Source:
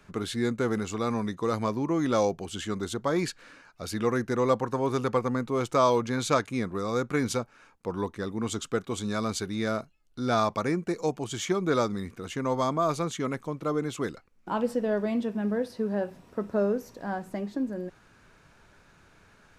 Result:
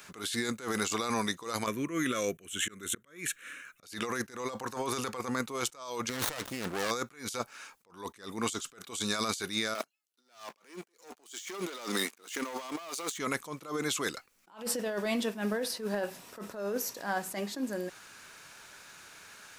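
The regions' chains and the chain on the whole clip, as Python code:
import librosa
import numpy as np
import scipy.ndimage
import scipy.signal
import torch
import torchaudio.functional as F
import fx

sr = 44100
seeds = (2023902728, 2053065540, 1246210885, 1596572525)

y = fx.chain(x, sr, fx.auto_swell(attack_ms=245.0),
    fx.fixed_phaser(hz=2000.0, stages=4), at=(1.66, 3.83))
y = fx.chain(y, sr, fx.over_compress(threshold_db=-34.0, ratio=-1.0),
    fx.running_max(window=17), at=(6.09, 6.91))
y = fx.chain(y, sr, fx.highpass(hz=240.0, slope=24),
    fx.leveller(passes=3),
    fx.upward_expand(threshold_db=-39.0, expansion=1.5), at=(9.75, 13.18))
y = fx.tilt_eq(y, sr, slope=4.0)
y = fx.over_compress(y, sr, threshold_db=-34.0, ratio=-1.0)
y = fx.attack_slew(y, sr, db_per_s=150.0)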